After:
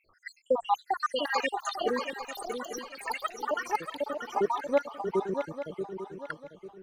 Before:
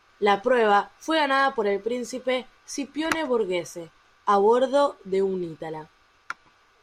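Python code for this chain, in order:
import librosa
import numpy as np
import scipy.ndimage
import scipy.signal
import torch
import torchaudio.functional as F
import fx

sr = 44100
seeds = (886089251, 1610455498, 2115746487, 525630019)

y = fx.spec_dropout(x, sr, seeds[0], share_pct=83)
y = fx.echo_pitch(y, sr, ms=567, semitones=7, count=2, db_per_echo=-3.0)
y = fx.echo_swing(y, sr, ms=846, ratio=3, feedback_pct=31, wet_db=-7.0)
y = y * 10.0 ** (-2.5 / 20.0)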